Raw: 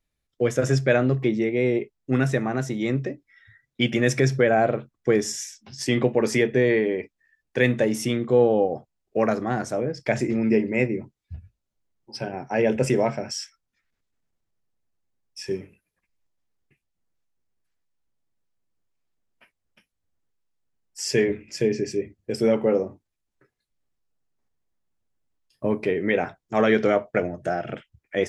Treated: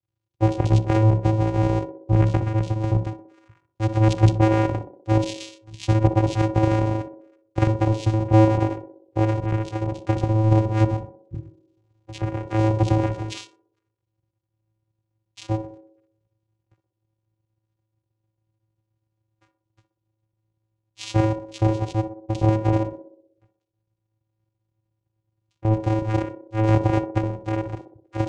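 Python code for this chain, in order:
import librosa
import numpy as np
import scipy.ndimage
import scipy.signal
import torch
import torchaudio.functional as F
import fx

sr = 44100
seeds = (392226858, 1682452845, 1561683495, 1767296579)

y = fx.cycle_switch(x, sr, every=2, mode='muted')
y = fx.peak_eq(y, sr, hz=5800.0, db=12.0, octaves=0.23)
y = fx.vocoder(y, sr, bands=4, carrier='square', carrier_hz=109.0)
y = fx.echo_banded(y, sr, ms=62, feedback_pct=62, hz=430.0, wet_db=-6.5)
y = fx.band_squash(y, sr, depth_pct=40, at=(11.34, 13.38))
y = y * 10.0 ** (6.0 / 20.0)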